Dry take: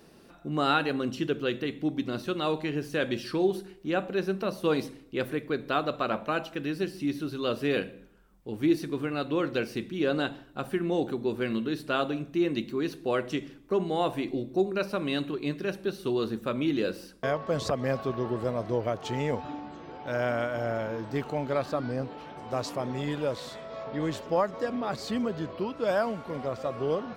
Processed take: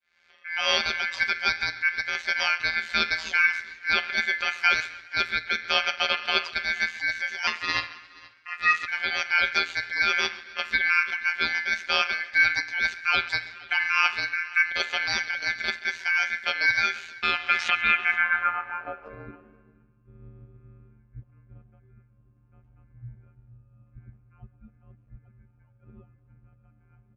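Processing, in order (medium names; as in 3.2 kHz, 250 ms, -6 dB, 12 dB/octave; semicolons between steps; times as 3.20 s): fade-in on the opening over 0.97 s; robot voice 168 Hz; ring modulator 1.9 kHz; low-pass sweep 4.5 kHz -> 120 Hz, 17.60–20.05 s; 7.47–8.88 s: ring modulator 330 Hz; on a send: delay 476 ms -23 dB; on the sum: modulated delay 134 ms, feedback 53%, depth 78 cents, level -21 dB; trim +7 dB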